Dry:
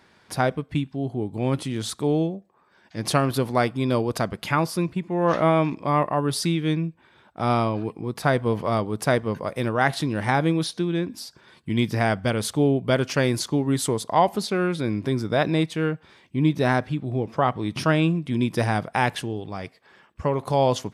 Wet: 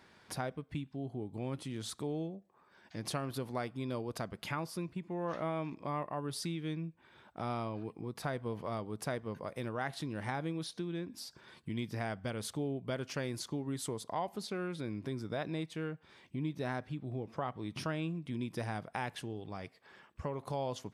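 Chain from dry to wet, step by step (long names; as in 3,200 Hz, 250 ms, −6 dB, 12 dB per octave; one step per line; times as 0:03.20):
downward compressor 2 to 1, threshold −39 dBFS, peak gain reduction 14 dB
level −4.5 dB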